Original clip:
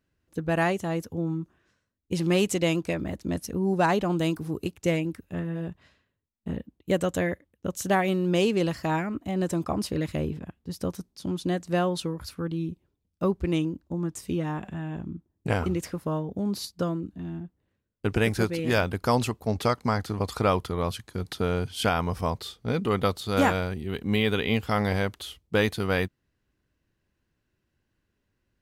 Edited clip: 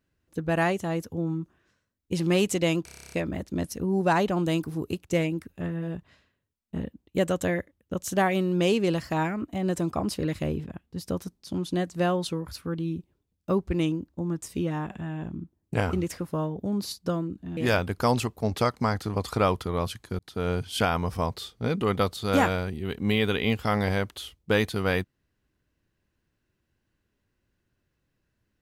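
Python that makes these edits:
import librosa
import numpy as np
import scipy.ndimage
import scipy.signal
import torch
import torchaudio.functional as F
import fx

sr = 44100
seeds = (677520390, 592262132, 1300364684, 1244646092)

y = fx.edit(x, sr, fx.stutter(start_s=2.85, slice_s=0.03, count=10),
    fx.cut(start_s=17.3, length_s=1.31),
    fx.fade_in_span(start_s=21.23, length_s=0.31), tone=tone)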